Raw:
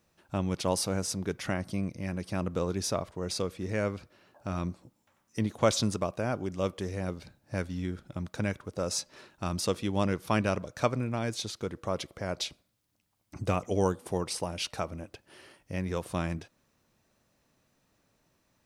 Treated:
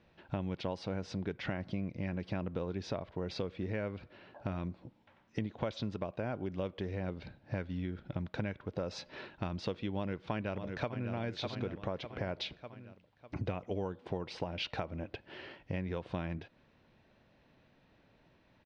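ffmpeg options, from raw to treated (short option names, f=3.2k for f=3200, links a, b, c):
-filter_complex "[0:a]asplit=2[a][b];[b]afade=t=in:st=9.92:d=0.01,afade=t=out:st=11.12:d=0.01,aecho=0:1:600|1200|1800|2400:0.281838|0.112735|0.0450941|0.0180377[c];[a][c]amix=inputs=2:normalize=0,lowpass=f=3.7k:w=0.5412,lowpass=f=3.7k:w=1.3066,acompressor=threshold=-40dB:ratio=6,equalizer=f=1.2k:t=o:w=0.2:g=-7.5,volume=6dB"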